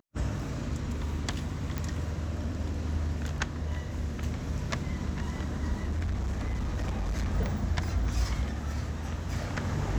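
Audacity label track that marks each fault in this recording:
1.780000	1.780000	pop
5.820000	7.280000	clipped -27 dBFS

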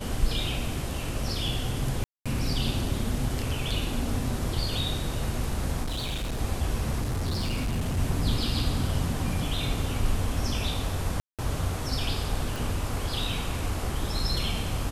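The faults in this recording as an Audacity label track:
2.040000	2.260000	dropout 216 ms
5.830000	6.390000	clipped -27 dBFS
7.010000	7.990000	clipped -24.5 dBFS
11.200000	11.390000	dropout 187 ms
12.560000	12.560000	pop

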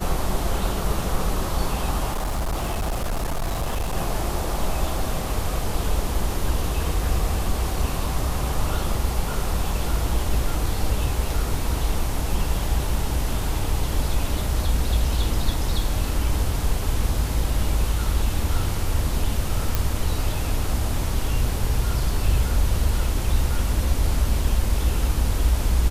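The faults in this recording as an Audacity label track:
2.120000	3.960000	clipped -21 dBFS
19.750000	19.750000	pop

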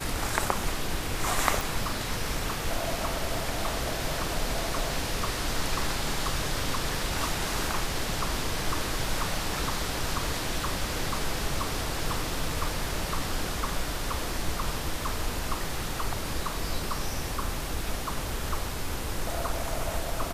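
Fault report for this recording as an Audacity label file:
1.610000	1.610000	pop

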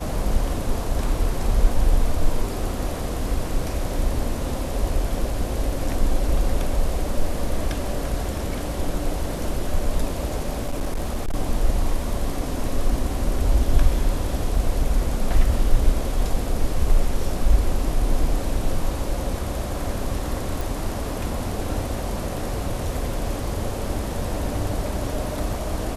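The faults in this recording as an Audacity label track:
10.650000	11.350000	clipped -20 dBFS
20.610000	20.610000	pop

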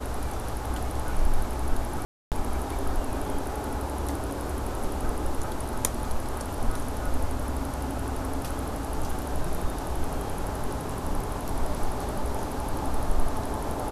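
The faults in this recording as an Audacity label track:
2.050000	2.320000	dropout 268 ms

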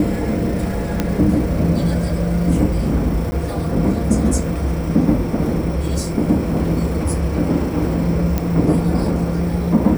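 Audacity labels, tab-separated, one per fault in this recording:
1.000000	1.000000	pop -5 dBFS
3.310000	3.320000	dropout 10 ms
8.380000	8.380000	pop -6 dBFS

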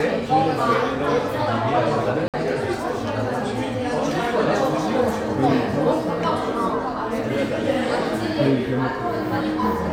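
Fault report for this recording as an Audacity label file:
2.280000	2.340000	dropout 57 ms

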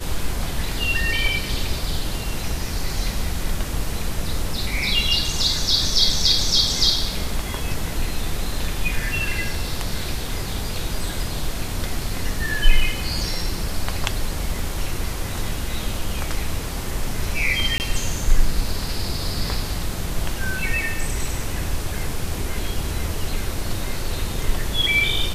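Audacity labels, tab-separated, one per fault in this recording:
17.780000	17.800000	dropout 19 ms

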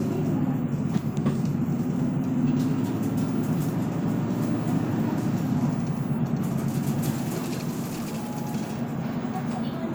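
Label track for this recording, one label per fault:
7.880000	8.320000	clipped -27 dBFS

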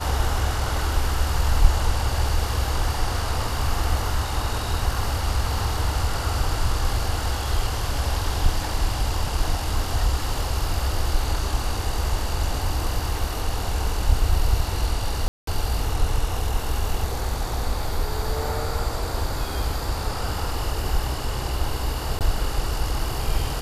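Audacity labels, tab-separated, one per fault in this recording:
15.280000	15.470000	dropout 193 ms
22.190000	22.210000	dropout 18 ms

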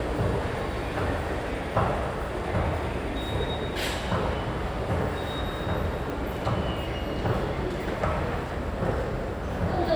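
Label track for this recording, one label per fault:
6.100000	6.100000	pop

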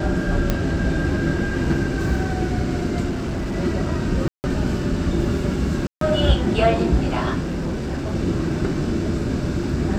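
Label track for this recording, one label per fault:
0.500000	0.500000	pop -6 dBFS
3.090000	3.560000	clipped -21.5 dBFS
4.280000	4.440000	dropout 159 ms
5.870000	6.010000	dropout 143 ms
7.420000	8.150000	clipped -21 dBFS

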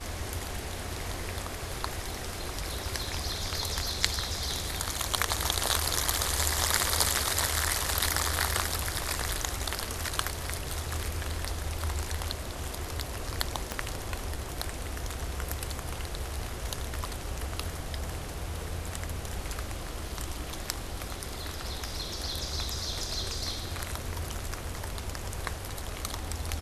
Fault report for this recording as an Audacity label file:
13.720000	13.720000	pop -15 dBFS

